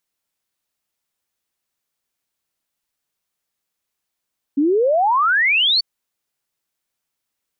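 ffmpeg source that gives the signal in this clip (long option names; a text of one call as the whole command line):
ffmpeg -f lavfi -i "aevalsrc='0.224*clip(min(t,1.24-t)/0.01,0,1)*sin(2*PI*270*1.24/log(4600/270)*(exp(log(4600/270)*t/1.24)-1))':duration=1.24:sample_rate=44100" out.wav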